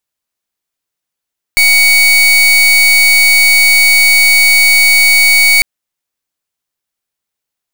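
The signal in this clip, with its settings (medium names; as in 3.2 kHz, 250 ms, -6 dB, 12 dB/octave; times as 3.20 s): pulse 2.24 kHz, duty 37% -7 dBFS 4.05 s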